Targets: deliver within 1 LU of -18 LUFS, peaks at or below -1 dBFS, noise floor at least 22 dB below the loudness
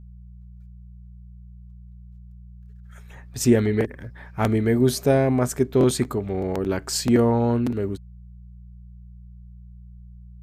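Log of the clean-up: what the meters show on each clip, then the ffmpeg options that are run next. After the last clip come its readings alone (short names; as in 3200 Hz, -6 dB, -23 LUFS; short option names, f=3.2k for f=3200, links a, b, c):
hum 60 Hz; harmonics up to 180 Hz; hum level -41 dBFS; loudness -22.0 LUFS; peak -6.0 dBFS; loudness target -18.0 LUFS
-> -af "bandreject=f=60:t=h:w=4,bandreject=f=120:t=h:w=4,bandreject=f=180:t=h:w=4"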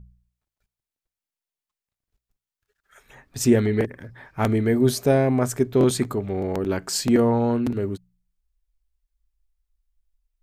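hum none; loudness -22.0 LUFS; peak -6.0 dBFS; loudness target -18.0 LUFS
-> -af "volume=4dB"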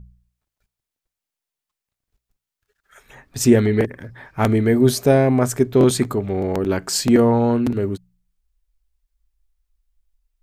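loudness -18.0 LUFS; peak -2.0 dBFS; noise floor -87 dBFS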